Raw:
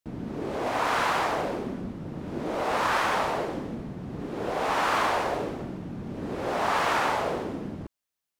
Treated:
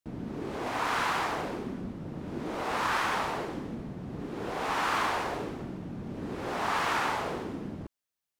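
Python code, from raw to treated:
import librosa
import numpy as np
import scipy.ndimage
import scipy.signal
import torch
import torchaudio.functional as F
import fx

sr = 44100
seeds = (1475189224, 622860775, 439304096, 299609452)

y = fx.dynamic_eq(x, sr, hz=590.0, q=1.9, threshold_db=-42.0, ratio=4.0, max_db=-6)
y = y * 10.0 ** (-2.5 / 20.0)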